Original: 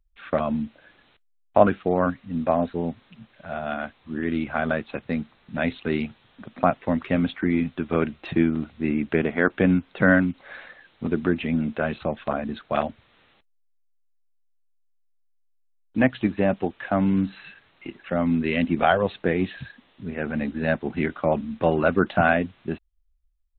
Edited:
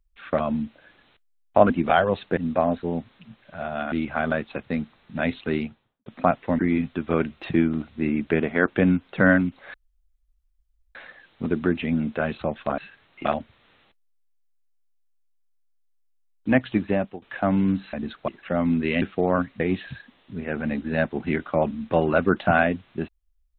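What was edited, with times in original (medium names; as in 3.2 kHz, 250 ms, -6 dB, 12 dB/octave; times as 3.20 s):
1.70–2.28 s: swap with 18.63–19.30 s
3.83–4.31 s: delete
5.87–6.45 s: studio fade out
6.98–7.41 s: delete
10.56 s: insert room tone 1.21 s
12.39–12.74 s: swap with 17.42–17.89 s
16.38–16.71 s: fade out, to -21 dB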